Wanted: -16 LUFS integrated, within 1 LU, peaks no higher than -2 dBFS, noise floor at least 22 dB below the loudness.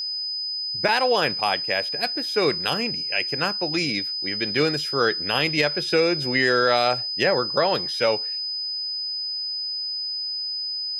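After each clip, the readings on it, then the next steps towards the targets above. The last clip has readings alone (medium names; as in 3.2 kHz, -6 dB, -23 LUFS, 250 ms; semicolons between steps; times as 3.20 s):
dropouts 1; longest dropout 3.9 ms; steady tone 5 kHz; tone level -26 dBFS; loudness -22.5 LUFS; peak level -8.0 dBFS; loudness target -16.0 LUFS
-> interpolate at 0.88 s, 3.9 ms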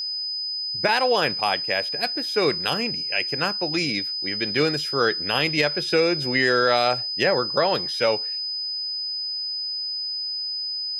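dropouts 0; steady tone 5 kHz; tone level -26 dBFS
-> band-stop 5 kHz, Q 30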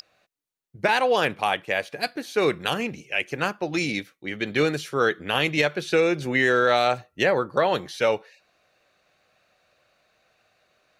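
steady tone not found; loudness -24.0 LUFS; peak level -9.0 dBFS; loudness target -16.0 LUFS
-> trim +8 dB; peak limiter -2 dBFS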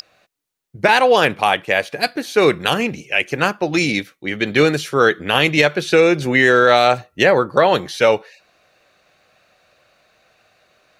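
loudness -16.0 LUFS; peak level -2.0 dBFS; noise floor -66 dBFS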